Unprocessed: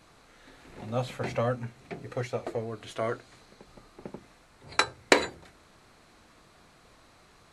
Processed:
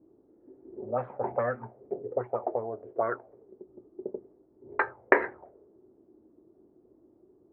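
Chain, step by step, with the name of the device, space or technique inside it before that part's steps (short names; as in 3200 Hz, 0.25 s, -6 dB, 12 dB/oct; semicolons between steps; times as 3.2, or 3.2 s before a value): envelope filter bass rig (envelope low-pass 310–1800 Hz up, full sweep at -24.5 dBFS; speaker cabinet 76–2200 Hz, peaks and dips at 84 Hz -5 dB, 160 Hz -9 dB, 390 Hz +9 dB, 600 Hz +5 dB, 870 Hz +6 dB); gain -6.5 dB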